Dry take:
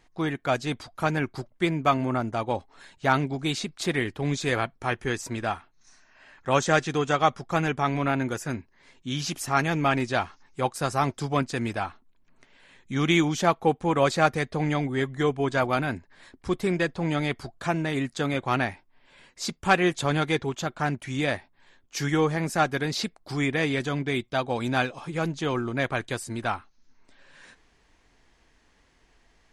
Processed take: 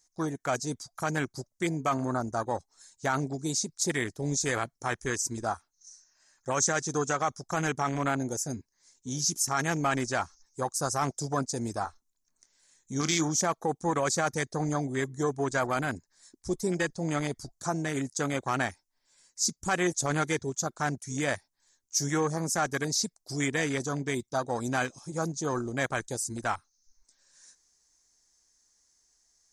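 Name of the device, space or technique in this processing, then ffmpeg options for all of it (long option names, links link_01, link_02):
over-bright horn tweeter: -filter_complex "[0:a]afwtdn=0.0316,highshelf=frequency=4200:width_type=q:width=3:gain=14,alimiter=limit=-16.5dB:level=0:latency=1:release=28,tiltshelf=frequency=970:gain=-4.5,asettb=1/sr,asplit=3[link_01][link_02][link_03];[link_01]atrim=end=11.844[link_04];[link_02]atrim=start=11.84:end=13.29,asetpts=PTS-STARTPTS,afade=type=in:duration=0.004:curve=qsin,afade=type=out:start_time=1.446:duration=0.004:curve=qsin,asplit=2[link_05][link_06];[link_06]adelay=25,volume=-13dB[link_07];[link_05][link_07]amix=inputs=2:normalize=0,atrim=end_sample=63945[link_08];[link_03]atrim=start=13.286[link_09];[link_04][link_08]acrossfade=duration=0.004:curve1=hsin:curve2=qsin[link_10];[link_10][link_09]acrossfade=duration=0.004:curve1=qsin:curve2=hsin"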